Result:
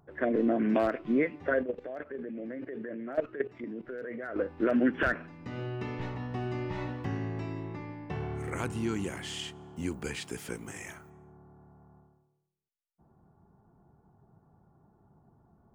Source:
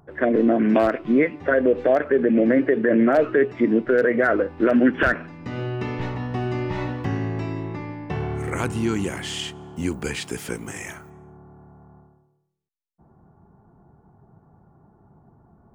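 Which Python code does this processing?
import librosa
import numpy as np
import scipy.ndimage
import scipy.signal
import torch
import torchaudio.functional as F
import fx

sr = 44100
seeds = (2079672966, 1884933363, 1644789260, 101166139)

y = fx.level_steps(x, sr, step_db=15, at=(1.63, 4.36))
y = y * librosa.db_to_amplitude(-8.5)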